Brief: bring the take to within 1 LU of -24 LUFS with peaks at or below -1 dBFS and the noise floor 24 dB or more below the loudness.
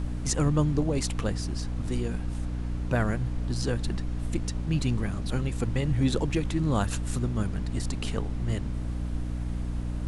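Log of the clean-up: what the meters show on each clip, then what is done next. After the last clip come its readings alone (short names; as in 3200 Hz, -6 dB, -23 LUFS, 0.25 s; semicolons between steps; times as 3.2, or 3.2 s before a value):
hum 60 Hz; harmonics up to 300 Hz; hum level -29 dBFS; noise floor -32 dBFS; noise floor target -54 dBFS; loudness -29.5 LUFS; peak -13.0 dBFS; loudness target -24.0 LUFS
-> notches 60/120/180/240/300 Hz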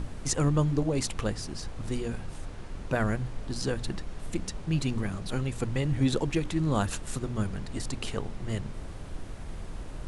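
hum none; noise floor -41 dBFS; noise floor target -55 dBFS
-> noise print and reduce 14 dB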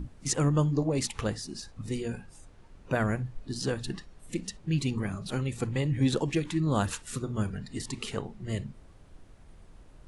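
noise floor -54 dBFS; noise floor target -55 dBFS
-> noise print and reduce 6 dB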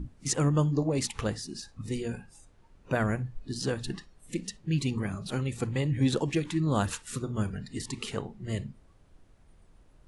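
noise floor -59 dBFS; loudness -31.0 LUFS; peak -14.5 dBFS; loudness target -24.0 LUFS
-> gain +7 dB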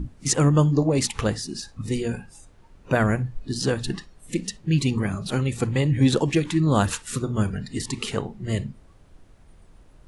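loudness -24.0 LUFS; peak -7.5 dBFS; noise floor -52 dBFS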